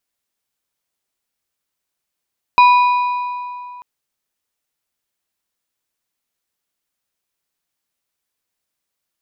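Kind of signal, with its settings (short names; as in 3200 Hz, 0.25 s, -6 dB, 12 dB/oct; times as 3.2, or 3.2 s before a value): metal hit plate, length 1.24 s, lowest mode 985 Hz, modes 4, decay 2.62 s, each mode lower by 9.5 dB, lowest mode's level -5 dB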